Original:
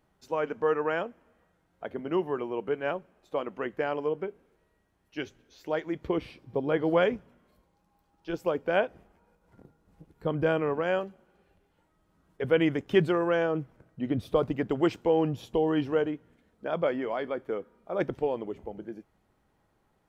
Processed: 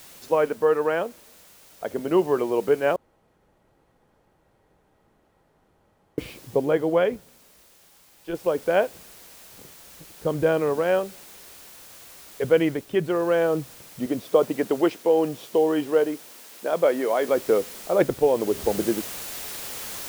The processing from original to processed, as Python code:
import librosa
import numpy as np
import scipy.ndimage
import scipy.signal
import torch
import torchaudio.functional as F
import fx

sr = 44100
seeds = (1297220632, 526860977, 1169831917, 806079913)

y = fx.noise_floor_step(x, sr, seeds[0], at_s=8.35, before_db=-55, after_db=-49, tilt_db=0.0)
y = fx.highpass(y, sr, hz=230.0, slope=12, at=(14.06, 17.29))
y = fx.edit(y, sr, fx.room_tone_fill(start_s=2.96, length_s=3.22),
    fx.fade_down_up(start_s=12.44, length_s=1.04, db=-11.0, fade_s=0.45), tone=tone)
y = fx.peak_eq(y, sr, hz=510.0, db=4.5, octaves=1.1)
y = fx.rider(y, sr, range_db=10, speed_s=0.5)
y = y * 10.0 ** (4.0 / 20.0)